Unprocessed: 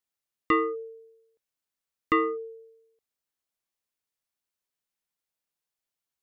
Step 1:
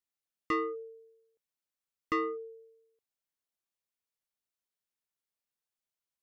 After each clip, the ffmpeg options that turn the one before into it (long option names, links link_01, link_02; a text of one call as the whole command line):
ffmpeg -i in.wav -af "asoftclip=type=tanh:threshold=-18dB,volume=-5.5dB" out.wav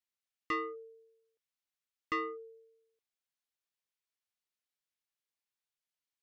ffmpeg -i in.wav -af "equalizer=frequency=2900:width=0.43:gain=7.5,volume=-7dB" out.wav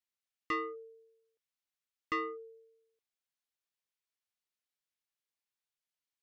ffmpeg -i in.wav -af anull out.wav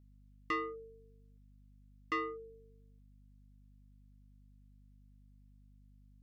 ffmpeg -i in.wav -af "aeval=exprs='val(0)+0.00112*(sin(2*PI*50*n/s)+sin(2*PI*2*50*n/s)/2+sin(2*PI*3*50*n/s)/3+sin(2*PI*4*50*n/s)/4+sin(2*PI*5*50*n/s)/5)':channel_layout=same,volume=-1dB" out.wav